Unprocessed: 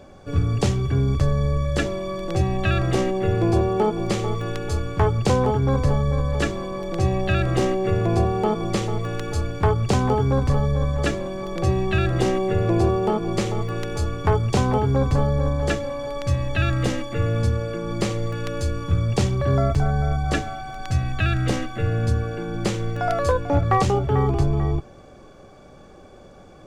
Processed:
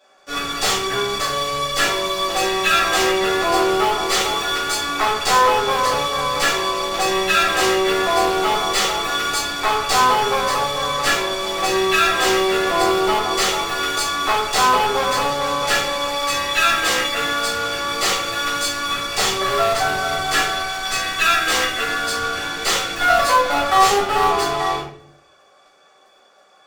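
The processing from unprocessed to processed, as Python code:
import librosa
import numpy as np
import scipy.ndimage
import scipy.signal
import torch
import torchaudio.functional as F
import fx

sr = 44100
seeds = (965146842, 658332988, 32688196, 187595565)

p1 = scipy.signal.sosfilt(scipy.signal.butter(2, 980.0, 'highpass', fs=sr, output='sos'), x)
p2 = fx.fuzz(p1, sr, gain_db=37.0, gate_db=-45.0)
p3 = p1 + (p2 * librosa.db_to_amplitude(-5.5))
p4 = fx.room_shoebox(p3, sr, seeds[0], volume_m3=73.0, walls='mixed', distance_m=2.2)
y = p4 * librosa.db_to_amplitude(-7.5)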